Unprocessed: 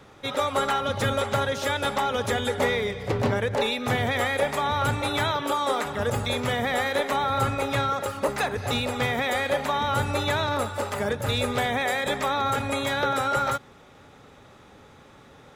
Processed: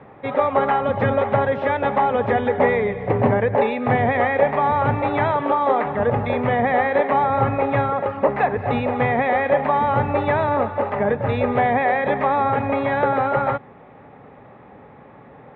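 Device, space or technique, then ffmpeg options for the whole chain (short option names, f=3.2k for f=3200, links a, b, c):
bass cabinet: -af "highpass=78,equalizer=f=85:t=q:w=4:g=-8,equalizer=f=340:t=q:w=4:g=-3,equalizer=f=740:t=q:w=4:g=3,equalizer=f=1.4k:t=q:w=4:g=-9,lowpass=f=2k:w=0.5412,lowpass=f=2k:w=1.3066,volume=7.5dB"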